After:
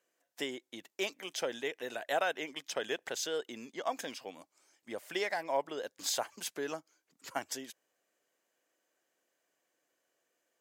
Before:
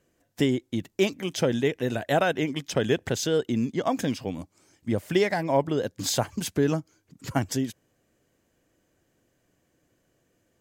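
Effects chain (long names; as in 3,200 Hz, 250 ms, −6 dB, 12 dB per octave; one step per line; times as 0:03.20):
high-pass filter 590 Hz 12 dB per octave
level −6 dB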